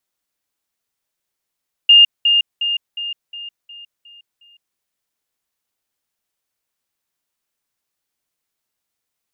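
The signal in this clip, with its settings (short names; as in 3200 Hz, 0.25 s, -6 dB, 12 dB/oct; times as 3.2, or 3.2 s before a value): level ladder 2820 Hz -4.5 dBFS, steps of -6 dB, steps 8, 0.16 s 0.20 s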